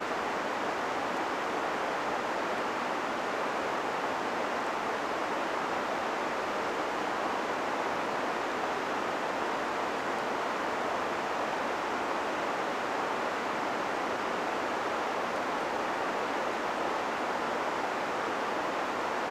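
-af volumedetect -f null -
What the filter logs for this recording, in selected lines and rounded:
mean_volume: -32.1 dB
max_volume: -17.2 dB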